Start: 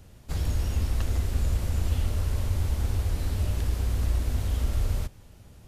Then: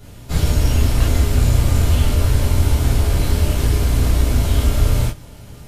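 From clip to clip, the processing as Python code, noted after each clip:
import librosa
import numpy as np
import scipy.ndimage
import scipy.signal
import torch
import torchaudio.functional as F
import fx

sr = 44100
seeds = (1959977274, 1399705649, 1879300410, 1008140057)

y = fx.rev_gated(x, sr, seeds[0], gate_ms=80, shape='flat', drr_db=-7.5)
y = F.gain(torch.from_numpy(y), 5.5).numpy()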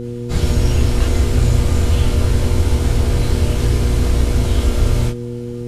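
y = scipy.signal.sosfilt(scipy.signal.butter(2, 10000.0, 'lowpass', fs=sr, output='sos'), x)
y = fx.dmg_buzz(y, sr, base_hz=120.0, harmonics=4, level_db=-26.0, tilt_db=-2, odd_only=False)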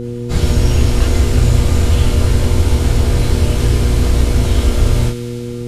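y = fx.echo_wet_highpass(x, sr, ms=100, feedback_pct=83, hz=2000.0, wet_db=-12.0)
y = F.gain(torch.from_numpy(y), 2.5).numpy()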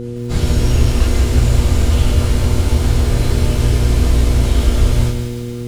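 y = fx.echo_crushed(x, sr, ms=166, feedback_pct=35, bits=6, wet_db=-7.5)
y = F.gain(torch.from_numpy(y), -2.0).numpy()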